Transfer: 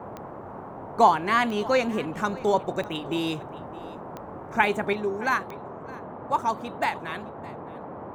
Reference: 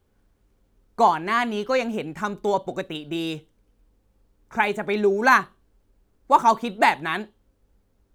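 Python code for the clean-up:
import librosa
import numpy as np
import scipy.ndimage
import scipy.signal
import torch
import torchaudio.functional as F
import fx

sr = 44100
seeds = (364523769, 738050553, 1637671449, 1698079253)

y = fx.fix_declick_ar(x, sr, threshold=10.0)
y = fx.noise_reduce(y, sr, print_start_s=0.26, print_end_s=0.76, reduce_db=26.0)
y = fx.fix_echo_inverse(y, sr, delay_ms=615, level_db=-20.5)
y = fx.fix_level(y, sr, at_s=4.93, step_db=8.5)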